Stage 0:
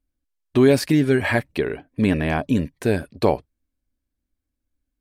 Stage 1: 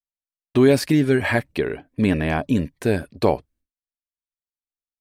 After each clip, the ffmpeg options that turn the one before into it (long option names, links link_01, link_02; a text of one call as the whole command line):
ffmpeg -i in.wav -af "agate=range=-33dB:threshold=-50dB:ratio=3:detection=peak" out.wav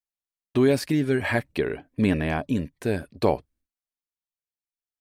ffmpeg -i in.wav -af "tremolo=f=0.55:d=0.34,volume=-2dB" out.wav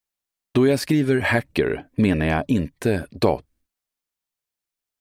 ffmpeg -i in.wav -af "acompressor=threshold=-25dB:ratio=2,volume=7.5dB" out.wav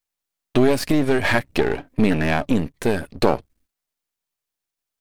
ffmpeg -i in.wav -af "aeval=exprs='if(lt(val(0),0),0.251*val(0),val(0))':channel_layout=same,volume=4.5dB" out.wav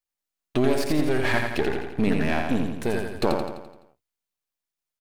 ffmpeg -i in.wav -af "aecho=1:1:85|170|255|340|425|510|595:0.596|0.316|0.167|0.0887|0.047|0.0249|0.0132,volume=-6dB" out.wav